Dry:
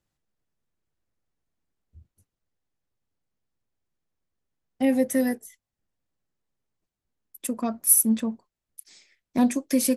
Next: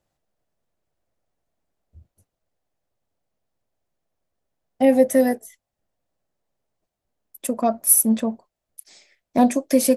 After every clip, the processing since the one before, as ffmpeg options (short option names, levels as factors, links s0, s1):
-af "equalizer=f=640:t=o:w=0.84:g=11,volume=1.33"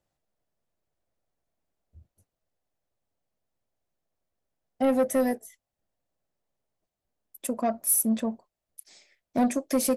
-af "asoftclip=type=tanh:threshold=0.237,volume=0.596"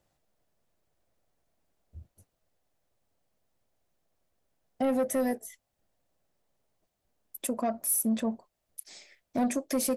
-af "alimiter=level_in=1.58:limit=0.0631:level=0:latency=1:release=279,volume=0.631,volume=2"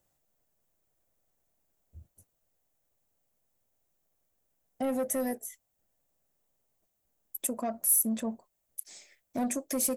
-af "aexciter=amount=3.1:drive=2.3:freq=6400,volume=0.668"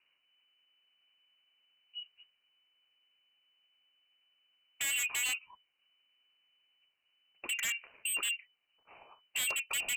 -af "lowpass=f=2600:t=q:w=0.5098,lowpass=f=2600:t=q:w=0.6013,lowpass=f=2600:t=q:w=0.9,lowpass=f=2600:t=q:w=2.563,afreqshift=-3000,aeval=exprs='0.0224*(abs(mod(val(0)/0.0224+3,4)-2)-1)':c=same,volume=1.78"